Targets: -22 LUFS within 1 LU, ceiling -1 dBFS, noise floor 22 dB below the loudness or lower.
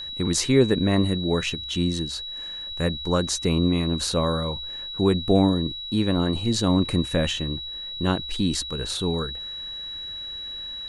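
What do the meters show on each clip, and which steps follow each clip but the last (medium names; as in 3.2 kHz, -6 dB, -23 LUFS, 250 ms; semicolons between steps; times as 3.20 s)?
tick rate 30 per s; steady tone 3.9 kHz; tone level -32 dBFS; loudness -24.5 LUFS; peak level -6.0 dBFS; loudness target -22.0 LUFS
-> de-click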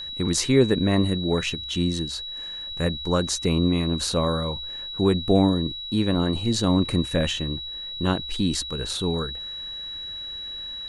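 tick rate 0 per s; steady tone 3.9 kHz; tone level -32 dBFS
-> band-stop 3.9 kHz, Q 30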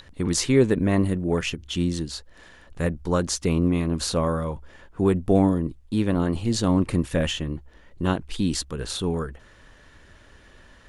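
steady tone not found; loudness -24.5 LUFS; peak level -6.5 dBFS; loudness target -22.0 LUFS
-> trim +2.5 dB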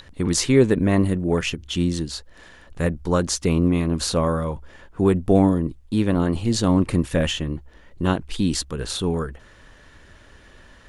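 loudness -22.0 LUFS; peak level -4.0 dBFS; noise floor -49 dBFS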